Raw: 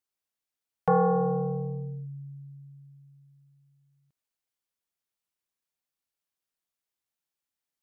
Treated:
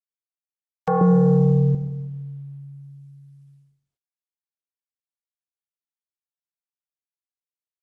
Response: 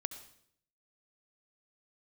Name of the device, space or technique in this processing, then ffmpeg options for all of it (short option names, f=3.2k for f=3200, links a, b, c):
speakerphone in a meeting room: -filter_complex "[0:a]asettb=1/sr,asplit=3[a][b][c];[a]atrim=end=1.014[d];[b]atrim=start=1.01:end=1.75,asetpts=PTS-STARTPTS,afade=t=in:d=0.004:c=qsin,afade=t=out:st=0.736:d=0.004:c=qsin,lowshelf=f=440:t=q:w=3:g=8.5[e];[c]atrim=start=1.746[f];[d][e]acrossfade=d=0.004:c1=hsin:c2=qsin[g];[g][f]acrossfade=d=0.004:c1=qsin:c2=hsin[h];[1:a]atrim=start_sample=2205[i];[h][i]afir=irnorm=-1:irlink=0,asplit=2[j][k];[k]adelay=100,highpass=300,lowpass=3.4k,asoftclip=type=hard:threshold=-18dB,volume=-27dB[l];[j][l]amix=inputs=2:normalize=0,dynaudnorm=f=490:g=5:m=12dB,agate=range=-51dB:threshold=-52dB:ratio=16:detection=peak" -ar 48000 -c:a libopus -b:a 24k